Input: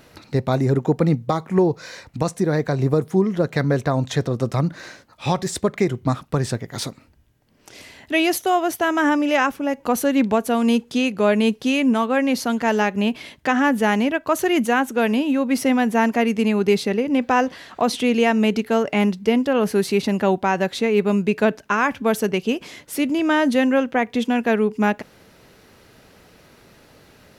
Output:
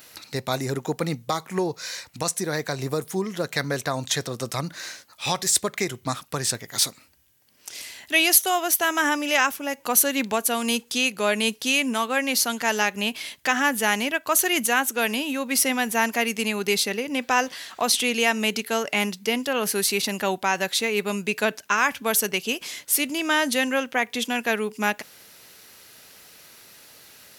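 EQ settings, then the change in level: tilt EQ +4.5 dB/octave; bass shelf 150 Hz +9 dB; -3.0 dB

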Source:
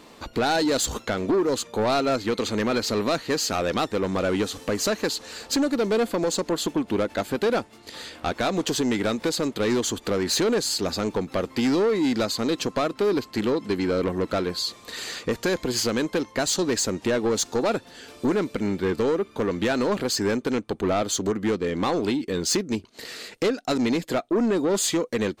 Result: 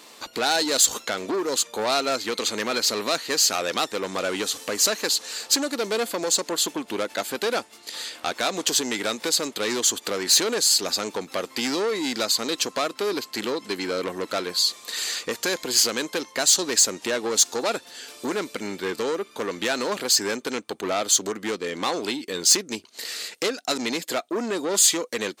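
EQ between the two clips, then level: RIAA curve recording; bass shelf 63 Hz -11.5 dB; treble shelf 12 kHz -11.5 dB; 0.0 dB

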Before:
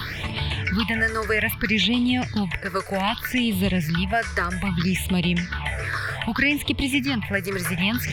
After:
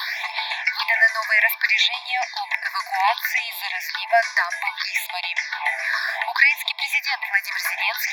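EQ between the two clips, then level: brick-wall FIR high-pass 650 Hz; static phaser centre 2 kHz, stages 8; +8.0 dB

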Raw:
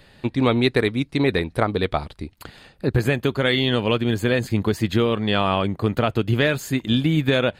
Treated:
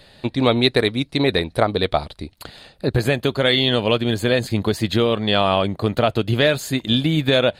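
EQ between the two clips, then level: fifteen-band graphic EQ 630 Hz +6 dB, 4 kHz +8 dB, 10 kHz +5 dB; 0.0 dB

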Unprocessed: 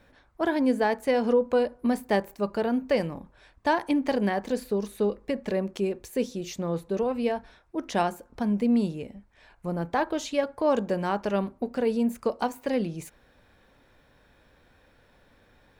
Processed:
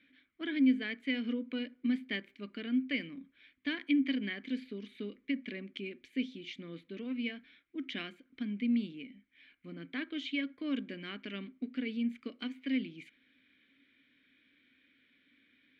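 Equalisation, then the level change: vowel filter i; high-order bell 1.9 kHz +10.5 dB 2.7 oct; 0.0 dB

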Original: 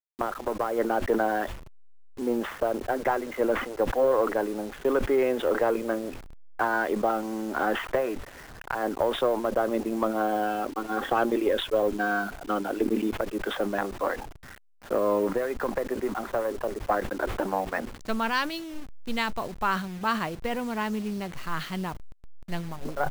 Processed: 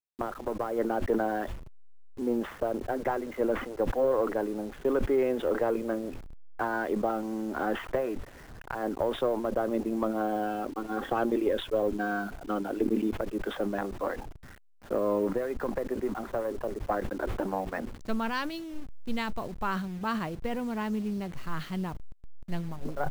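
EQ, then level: bass shelf 490 Hz +8 dB; -7.0 dB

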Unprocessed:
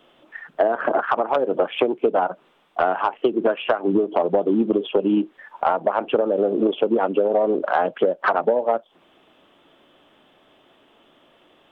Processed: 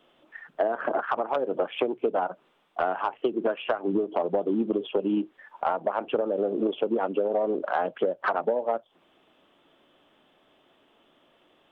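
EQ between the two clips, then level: hum notches 60/120 Hz; -6.5 dB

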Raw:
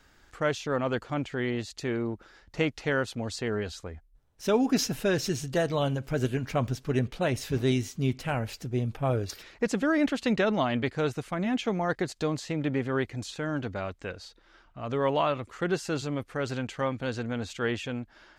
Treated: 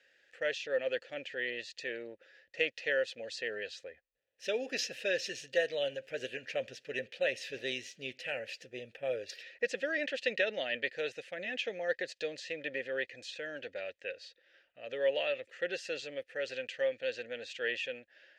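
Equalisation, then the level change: dynamic bell 4.8 kHz, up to +5 dB, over -50 dBFS, Q 0.84; vowel filter e; tilt shelf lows -8 dB, about 1.5 kHz; +7.0 dB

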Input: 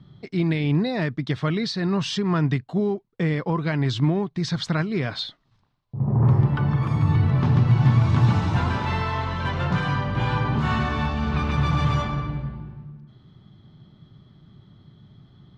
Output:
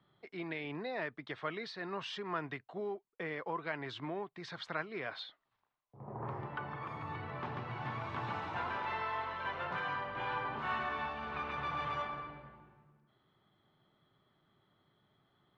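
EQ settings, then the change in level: three-band isolator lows -20 dB, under 390 Hz, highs -23 dB, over 2.8 kHz; treble shelf 3.6 kHz +9 dB; -9.0 dB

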